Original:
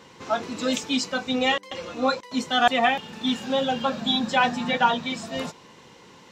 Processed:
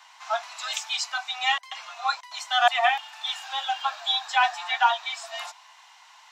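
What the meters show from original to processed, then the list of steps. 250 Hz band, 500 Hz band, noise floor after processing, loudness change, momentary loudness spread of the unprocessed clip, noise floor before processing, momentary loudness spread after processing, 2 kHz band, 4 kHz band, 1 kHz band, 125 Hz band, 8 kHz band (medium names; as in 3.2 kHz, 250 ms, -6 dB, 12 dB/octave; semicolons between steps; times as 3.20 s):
under -40 dB, -8.0 dB, -53 dBFS, -1.5 dB, 9 LU, -50 dBFS, 11 LU, 0.0 dB, 0.0 dB, 0.0 dB, under -40 dB, 0.0 dB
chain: steep high-pass 670 Hz 96 dB/octave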